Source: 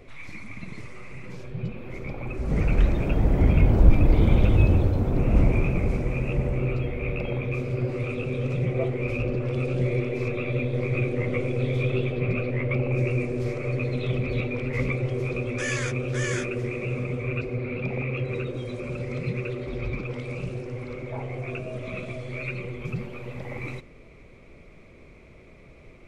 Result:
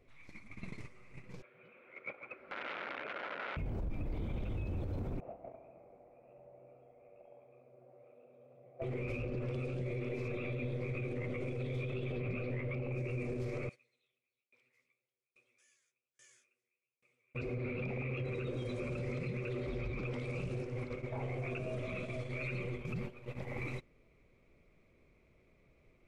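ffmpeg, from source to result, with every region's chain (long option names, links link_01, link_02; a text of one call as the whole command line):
ffmpeg -i in.wav -filter_complex "[0:a]asettb=1/sr,asplit=3[link_01][link_02][link_03];[link_01]atrim=end=1.424[link_04];[link_02]atrim=start=1.42:end=3.57,asetpts=PTS-STARTPTS,afade=type=in:duration=0.004:curve=qsin,afade=type=out:start_time=2.146:duration=0.004:curve=qsin,aeval=exprs='(mod(8.91*val(0)+1,2)-1)/8.91':channel_layout=same,highpass=500,equalizer=frequency=560:width_type=q:width=4:gain=4,equalizer=frequency=810:width_type=q:width=4:gain=-3,equalizer=frequency=1400:width_type=q:width=4:gain=10,equalizer=frequency=2200:width_type=q:width=4:gain=7,lowpass=frequency=3200:width=0.5412,lowpass=frequency=3200:width=1.3066[link_05];[link_03]atrim=start=3.566[link_06];[link_04][link_05]acrossfade=duration=0.004:curve1=hsin:curve2=qsin[link_07];[link_07][link_06]acrossfade=duration=0.004:curve1=qsin:curve2=hsin,asettb=1/sr,asplit=3[link_08][link_09][link_10];[link_08]atrim=end=5.204[link_11];[link_09]atrim=start=5.2:end=8.82,asetpts=PTS-STARTPTS,afade=type=in:duration=0.004:curve=qsin,afade=type=out:start_time=3.616:duration=0.004:curve=qsin,bandpass=frequency=680:width_type=q:width=5.2,aecho=1:1:69|138|207|276|345|414:0.531|0.26|0.127|0.0625|0.0306|0.015,atrim=end_sample=159642[link_12];[link_10]atrim=start=8.816[link_13];[link_11][link_12]acrossfade=duration=0.004:curve1=hsin:curve2=qsin[link_14];[link_14][link_13]acrossfade=duration=0.004:curve1=qsin:curve2=hsin,asettb=1/sr,asplit=3[link_15][link_16][link_17];[link_15]atrim=end=13.694[link_18];[link_16]atrim=start=13.69:end=17.35,asetpts=PTS-STARTPTS,afade=type=in:duration=0.004:curve=qsin,afade=type=out:start_time=3.656:duration=0.004:curve=qsin,aderivative,flanger=delay=4.7:depth=9.2:regen=69:speed=1.2:shape=triangular,aeval=exprs='val(0)*pow(10,-30*if(lt(mod(1.2*n/s,1),2*abs(1.2)/1000),1-mod(1.2*n/s,1)/(2*abs(1.2)/1000),(mod(1.2*n/s,1)-2*abs(1.2)/1000)/(1-2*abs(1.2)/1000))/20)':channel_layout=same[link_19];[link_17]atrim=start=17.346[link_20];[link_18][link_19]acrossfade=duration=0.004:curve1=hsin:curve2=qsin[link_21];[link_21][link_20]acrossfade=duration=0.004:curve1=qsin:curve2=hsin,agate=range=-15dB:threshold=-34dB:ratio=16:detection=peak,acompressor=threshold=-28dB:ratio=4,alimiter=level_in=4.5dB:limit=-24dB:level=0:latency=1:release=35,volume=-4.5dB,volume=-2.5dB" out.wav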